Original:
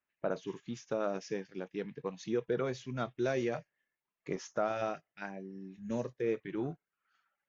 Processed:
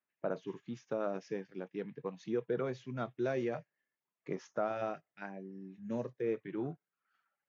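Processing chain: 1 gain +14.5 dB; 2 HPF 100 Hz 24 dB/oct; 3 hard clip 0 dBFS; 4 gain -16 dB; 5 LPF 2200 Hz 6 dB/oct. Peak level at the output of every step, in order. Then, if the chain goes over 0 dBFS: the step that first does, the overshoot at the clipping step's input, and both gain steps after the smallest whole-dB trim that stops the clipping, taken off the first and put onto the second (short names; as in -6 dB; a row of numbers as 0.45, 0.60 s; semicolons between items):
-5.0, -6.0, -6.0, -22.0, -22.5 dBFS; no overload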